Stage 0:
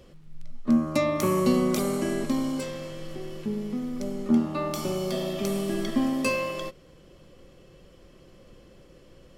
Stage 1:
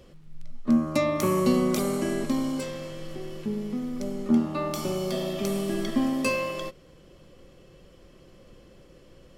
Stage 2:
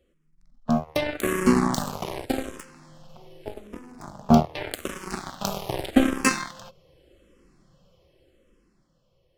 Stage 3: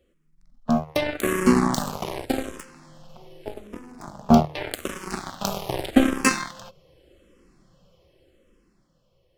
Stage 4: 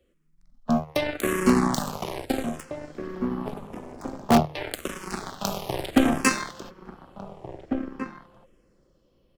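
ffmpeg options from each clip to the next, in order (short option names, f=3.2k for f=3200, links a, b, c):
-af anull
-filter_complex "[0:a]aeval=exprs='0.316*(cos(1*acos(clip(val(0)/0.316,-1,1)))-cos(1*PI/2))+0.0631*(cos(3*acos(clip(val(0)/0.316,-1,1)))-cos(3*PI/2))+0.0224*(cos(5*acos(clip(val(0)/0.316,-1,1)))-cos(5*PI/2))+0.0398*(cos(7*acos(clip(val(0)/0.316,-1,1)))-cos(7*PI/2))':c=same,dynaudnorm=f=470:g=7:m=12dB,asplit=2[a][b];[b]afreqshift=-0.84[c];[a][c]amix=inputs=2:normalize=1,volume=5dB"
-af "bandreject=f=50:t=h:w=6,bandreject=f=100:t=h:w=6,bandreject=f=150:t=h:w=6,volume=1.5dB"
-filter_complex "[0:a]acrossover=split=210[a][b];[a]aeval=exprs='(mod(5.96*val(0)+1,2)-1)/5.96':c=same[c];[c][b]amix=inputs=2:normalize=0,asplit=2[d][e];[e]adelay=1749,volume=-8dB,highshelf=f=4k:g=-39.4[f];[d][f]amix=inputs=2:normalize=0,volume=-1.5dB"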